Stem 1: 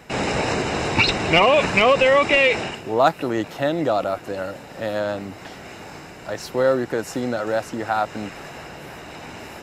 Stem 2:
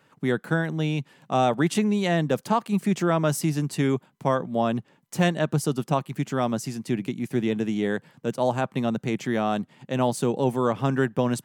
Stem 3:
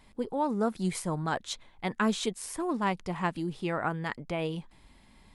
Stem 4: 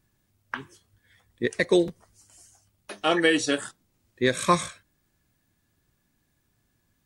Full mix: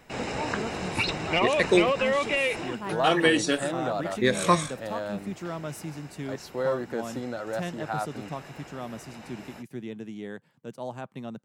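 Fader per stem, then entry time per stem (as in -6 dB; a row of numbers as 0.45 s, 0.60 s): -9.5 dB, -12.5 dB, -7.5 dB, -0.5 dB; 0.00 s, 2.40 s, 0.00 s, 0.00 s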